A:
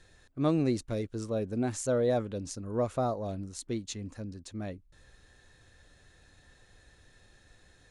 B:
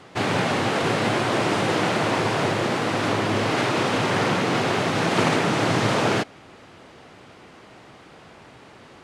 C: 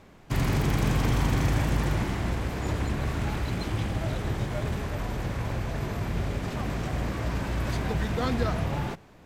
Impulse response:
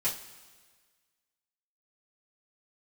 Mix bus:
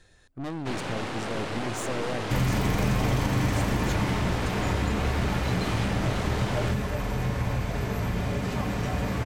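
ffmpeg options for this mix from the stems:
-filter_complex "[0:a]aeval=exprs='(tanh(50.1*val(0)+0.5)-tanh(0.5))/50.1':c=same,volume=3dB[a];[1:a]aeval=exprs='(tanh(11.2*val(0)+0.65)-tanh(0.65))/11.2':c=same,adelay=500,volume=-6.5dB[b];[2:a]adelay=2000,volume=-2dB,asplit=2[c][d];[d]volume=-4.5dB[e];[3:a]atrim=start_sample=2205[f];[e][f]afir=irnorm=-1:irlink=0[g];[a][b][c][g]amix=inputs=4:normalize=0,acompressor=threshold=-21dB:ratio=3"

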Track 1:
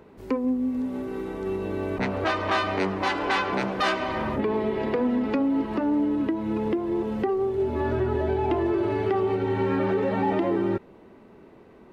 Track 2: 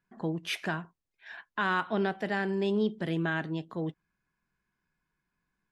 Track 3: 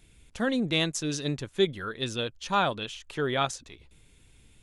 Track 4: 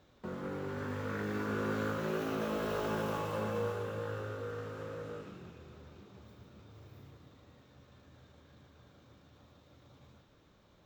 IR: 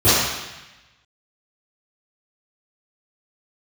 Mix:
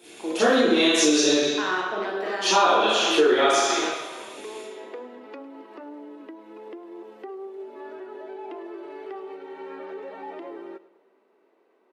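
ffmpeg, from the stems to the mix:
-filter_complex "[0:a]volume=-11.5dB,asplit=2[a][b];[b]volume=-17.5dB[c];[1:a]volume=-1.5dB,asplit=2[d][e];[e]volume=-22dB[f];[2:a]alimiter=limit=-20dB:level=0:latency=1,volume=3dB,asplit=3[g][h][i];[g]atrim=end=1.37,asetpts=PTS-STARTPTS,afade=t=out:st=1.366:d=0.004:c=hsin[j];[h]atrim=start=1.37:end=2.35,asetpts=PTS-STARTPTS,volume=0[k];[i]atrim=start=2.35,asetpts=PTS-STARTPTS,afade=t=in:d=0.004:c=hsin[l];[j][k][l]concat=n=3:v=0:a=1,asplit=3[m][n][o];[n]volume=-7dB[p];[3:a]volume=-19dB[q];[o]apad=whole_len=478821[r];[q][r]sidechaincompress=threshold=-33dB:ratio=8:attack=16:release=1290[s];[4:a]atrim=start_sample=2205[t];[f][p]amix=inputs=2:normalize=0[u];[u][t]afir=irnorm=-1:irlink=0[v];[c]aecho=0:1:104|208|312|416|520|624|728:1|0.51|0.26|0.133|0.0677|0.0345|0.0176[w];[a][d][m][s][v][w]amix=inputs=6:normalize=0,highpass=f=340:w=0.5412,highpass=f=340:w=1.3066,acompressor=threshold=-16dB:ratio=6"

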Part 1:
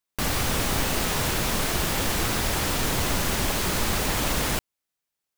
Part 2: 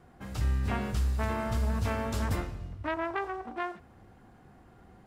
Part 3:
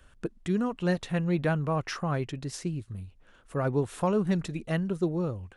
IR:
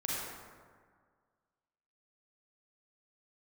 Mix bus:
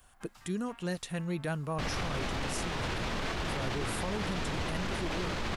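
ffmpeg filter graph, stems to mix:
-filter_complex "[0:a]lowpass=3.9k,adelay=1600,volume=-5dB[a];[1:a]highpass=140,lowshelf=f=630:t=q:w=1.5:g=-13,acompressor=threshold=-33dB:ratio=6,volume=-6.5dB[b];[2:a]aemphasis=mode=production:type=75fm,volume=-6dB,asplit=2[c][d];[d]apad=whole_len=223241[e];[b][e]sidechaincompress=threshold=-44dB:ratio=6:attack=32:release=822[f];[a][f][c]amix=inputs=3:normalize=0,alimiter=level_in=1dB:limit=-24dB:level=0:latency=1:release=22,volume=-1dB"

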